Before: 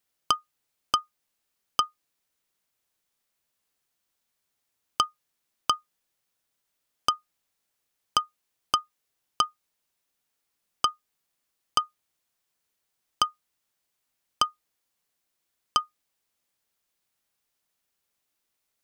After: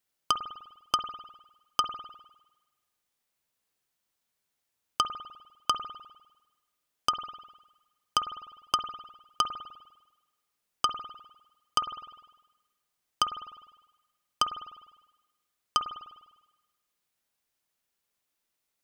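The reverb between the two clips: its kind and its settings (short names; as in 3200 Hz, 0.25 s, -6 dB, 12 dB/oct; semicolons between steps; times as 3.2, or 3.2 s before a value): spring tank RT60 1.1 s, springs 50 ms, chirp 40 ms, DRR 8 dB; gain -2.5 dB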